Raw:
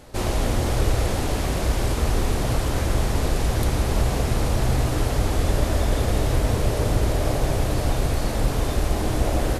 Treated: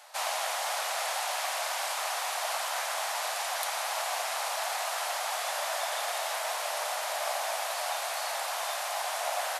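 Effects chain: steep high-pass 660 Hz 48 dB/oct

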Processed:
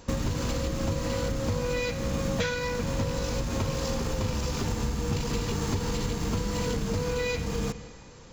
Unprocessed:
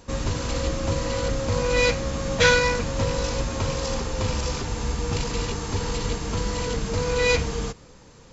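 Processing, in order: reverb RT60 1.6 s, pre-delay 41 ms, DRR 15.5 dB; in parallel at -9 dB: bit-crush 5-bit; on the sum: compressor 12:1, threshold -27 dBFS, peak gain reduction 17.5 dB; dynamic EQ 180 Hz, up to +6 dB, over -46 dBFS, Q 0.72

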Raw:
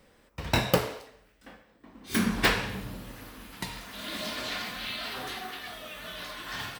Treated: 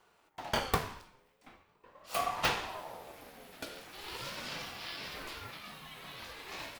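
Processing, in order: ring modulator with a swept carrier 700 Hz, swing 35%, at 0.42 Hz; gain -4 dB

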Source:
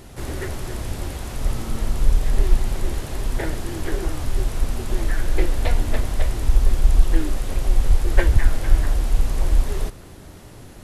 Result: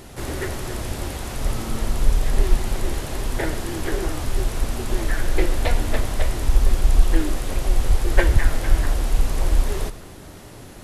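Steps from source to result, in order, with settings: low shelf 170 Hz -4.5 dB; reverb RT60 0.65 s, pre-delay 35 ms, DRR 16 dB; gain +3 dB

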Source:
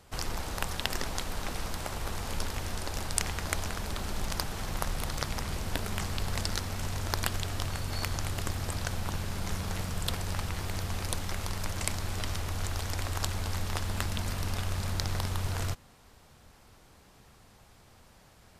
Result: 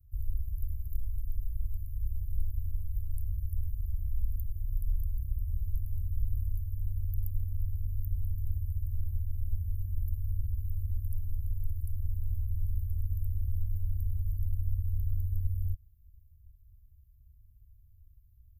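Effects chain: inverse Chebyshev band-stop 280–6700 Hz, stop band 60 dB; high shelf 8200 Hz -5 dB; gain +5.5 dB

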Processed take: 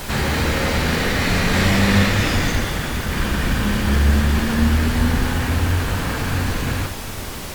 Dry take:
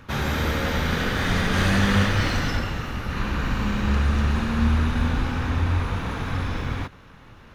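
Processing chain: in parallel at -9.5 dB: hard clip -25.5 dBFS, distortion -7 dB; on the sum: Schroeder reverb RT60 2.9 s, combs from 29 ms, DRR 12 dB; formant shift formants +3 st; added noise pink -33 dBFS; gain +2.5 dB; Opus 48 kbps 48000 Hz

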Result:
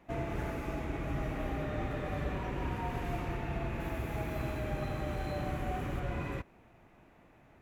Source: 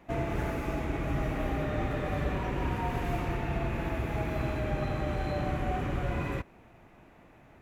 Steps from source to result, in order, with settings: 3.8–6 high shelf 9000 Hz +11 dB; gain -4.5 dB

